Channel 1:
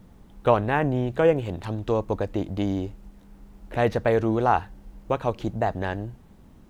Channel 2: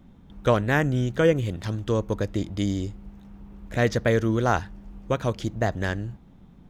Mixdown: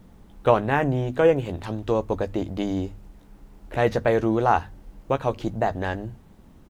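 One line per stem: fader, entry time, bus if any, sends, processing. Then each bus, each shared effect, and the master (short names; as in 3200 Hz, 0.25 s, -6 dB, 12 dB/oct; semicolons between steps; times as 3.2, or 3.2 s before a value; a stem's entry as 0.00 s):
+1.0 dB, 0.00 s, no send, notches 50/100/150/200/250 Hz
-12.0 dB, 14 ms, no send, dry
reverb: off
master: dry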